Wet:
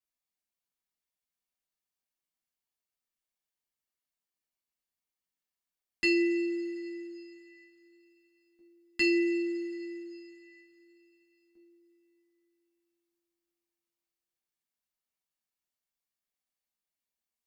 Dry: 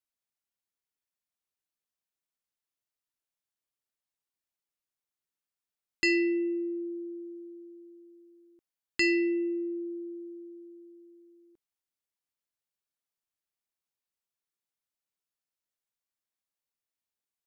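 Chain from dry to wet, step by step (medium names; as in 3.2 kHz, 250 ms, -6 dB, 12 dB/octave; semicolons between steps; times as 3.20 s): two-slope reverb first 0.23 s, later 3.7 s, from -21 dB, DRR -4.5 dB; trim -6.5 dB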